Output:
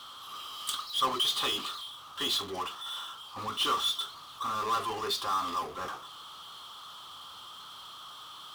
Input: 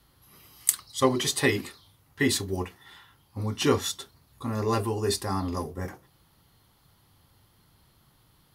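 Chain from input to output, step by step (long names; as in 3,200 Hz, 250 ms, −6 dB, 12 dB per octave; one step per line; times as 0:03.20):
pair of resonant band-passes 2,000 Hz, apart 1.4 octaves
power curve on the samples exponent 0.5
level +2 dB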